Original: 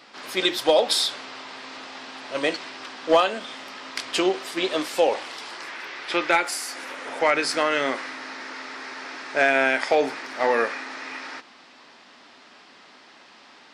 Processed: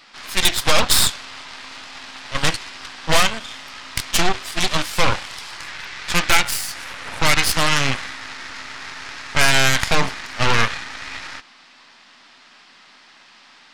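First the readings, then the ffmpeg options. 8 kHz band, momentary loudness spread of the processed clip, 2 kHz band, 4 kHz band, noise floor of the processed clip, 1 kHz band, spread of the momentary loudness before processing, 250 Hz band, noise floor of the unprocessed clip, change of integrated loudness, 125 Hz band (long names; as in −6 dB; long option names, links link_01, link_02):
+12.0 dB, 18 LU, +5.0 dB, +7.5 dB, −49 dBFS, +2.5 dB, 16 LU, +0.5 dB, −51 dBFS, +5.0 dB, +22.0 dB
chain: -af "aeval=exprs='0.355*(cos(1*acos(clip(val(0)/0.355,-1,1)))-cos(1*PI/2))+0.158*(cos(6*acos(clip(val(0)/0.355,-1,1)))-cos(6*PI/2))':channel_layout=same,equalizer=frequency=420:width_type=o:width=2:gain=-10.5,volume=3.5dB"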